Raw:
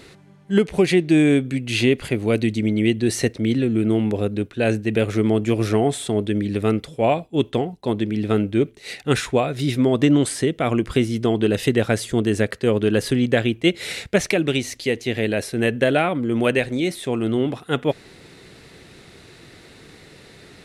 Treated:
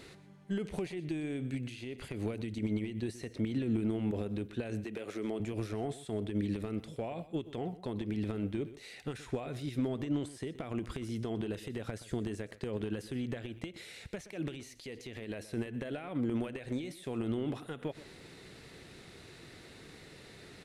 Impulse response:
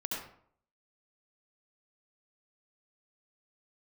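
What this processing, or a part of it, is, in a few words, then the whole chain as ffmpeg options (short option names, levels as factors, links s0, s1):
de-esser from a sidechain: -filter_complex "[0:a]asettb=1/sr,asplit=3[s0][s1][s2];[s0]atrim=end=4.844[s3];[s1]atrim=start=4.84:end=5.4,asetpts=PTS-STARTPTS,afade=t=in:d=0.004:c=qsin,afade=t=out:st=0.556:d=0.004:c=qsin,highpass=280[s4];[s2]atrim=start=5.396[s5];[s3][s4]acrossfade=d=0.004:c1=hsin:c2=qsin[s6];[s6][s5]acrossfade=d=0.004:c1=qsin:c2=hsin,asplit=2[s7][s8];[s8]highpass=f=5500:p=1,apad=whole_len=910608[s9];[s7][s9]sidechaincompress=threshold=0.00708:ratio=16:attack=1.3:release=63,aecho=1:1:124:0.158,volume=0.447"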